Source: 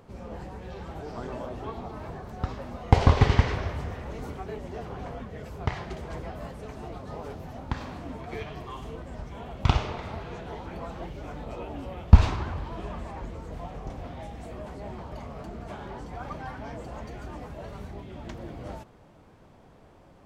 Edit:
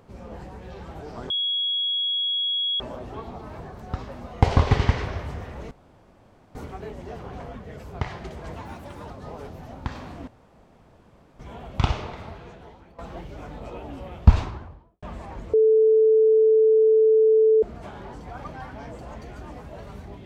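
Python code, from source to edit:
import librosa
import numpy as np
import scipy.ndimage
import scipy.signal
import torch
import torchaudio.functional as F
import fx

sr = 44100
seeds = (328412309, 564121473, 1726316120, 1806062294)

y = fx.studio_fade_out(x, sr, start_s=12.05, length_s=0.83)
y = fx.edit(y, sr, fx.insert_tone(at_s=1.3, length_s=1.5, hz=3330.0, db=-22.0),
    fx.insert_room_tone(at_s=4.21, length_s=0.84),
    fx.speed_span(start_s=6.19, length_s=0.77, speed=1.34),
    fx.room_tone_fill(start_s=8.13, length_s=1.12),
    fx.fade_out_to(start_s=9.86, length_s=0.98, floor_db=-18.0),
    fx.bleep(start_s=13.39, length_s=2.09, hz=439.0, db=-13.5), tone=tone)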